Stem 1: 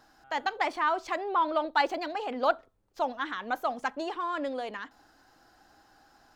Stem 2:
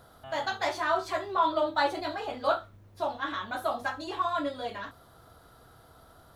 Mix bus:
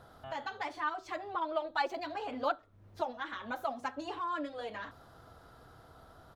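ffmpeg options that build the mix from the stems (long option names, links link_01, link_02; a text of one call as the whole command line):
ffmpeg -i stem1.wav -i stem2.wav -filter_complex "[0:a]dynaudnorm=framelen=250:gausssize=11:maxgain=4dB,asplit=2[link_01][link_02];[link_02]adelay=5.8,afreqshift=0.61[link_03];[link_01][link_03]amix=inputs=2:normalize=1,volume=-7dB,asplit=2[link_04][link_05];[1:a]highshelf=frequency=5100:gain=-10.5,acompressor=threshold=-38dB:ratio=10,volume=-0.5dB[link_06];[link_05]apad=whole_len=280236[link_07];[link_06][link_07]sidechaincompress=threshold=-40dB:ratio=3:attack=35:release=450[link_08];[link_04][link_08]amix=inputs=2:normalize=0" out.wav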